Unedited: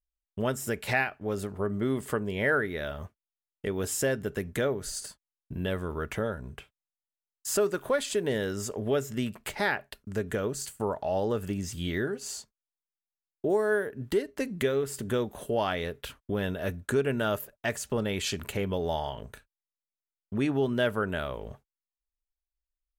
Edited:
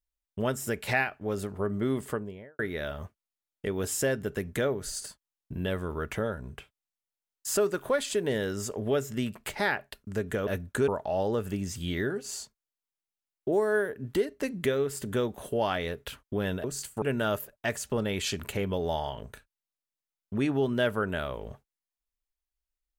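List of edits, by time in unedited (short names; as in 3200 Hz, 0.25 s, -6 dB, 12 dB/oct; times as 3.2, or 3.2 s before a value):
1.95–2.59 studio fade out
10.47–10.85 swap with 16.61–17.02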